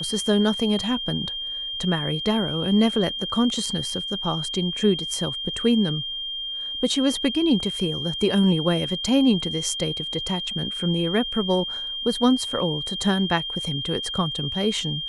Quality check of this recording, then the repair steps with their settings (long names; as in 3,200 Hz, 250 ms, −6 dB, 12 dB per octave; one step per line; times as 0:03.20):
whistle 3,200 Hz −28 dBFS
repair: notch filter 3,200 Hz, Q 30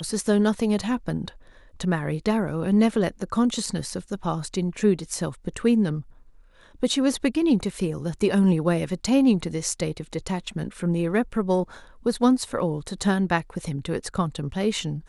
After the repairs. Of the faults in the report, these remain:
none of them is left